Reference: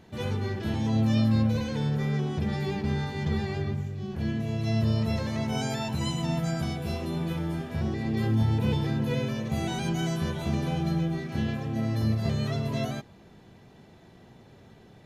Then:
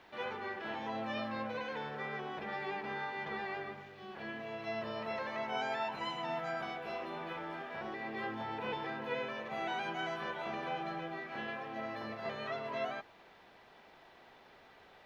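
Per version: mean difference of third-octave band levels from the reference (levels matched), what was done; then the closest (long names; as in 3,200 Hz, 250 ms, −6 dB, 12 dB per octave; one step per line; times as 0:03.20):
8.5 dB: high-pass filter 790 Hz 12 dB per octave
dynamic equaliser 4,100 Hz, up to −6 dB, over −55 dBFS, Q 1.3
bit-depth reduction 10 bits, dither triangular
high-frequency loss of the air 320 metres
level +4 dB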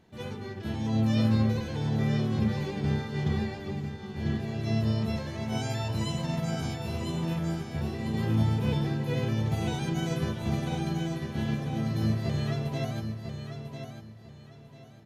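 3.0 dB: mains-hum notches 50/100 Hz
on a send: repeating echo 997 ms, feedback 35%, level −5 dB
on the sum: expander for the loud parts 1.5 to 1, over −36 dBFS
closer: second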